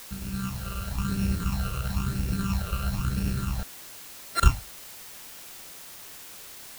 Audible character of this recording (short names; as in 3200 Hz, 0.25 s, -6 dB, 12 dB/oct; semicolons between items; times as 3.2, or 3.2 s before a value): a buzz of ramps at a fixed pitch in blocks of 32 samples; tremolo saw down 9.2 Hz, depth 35%; phasing stages 8, 1 Hz, lowest notch 250–1100 Hz; a quantiser's noise floor 8-bit, dither triangular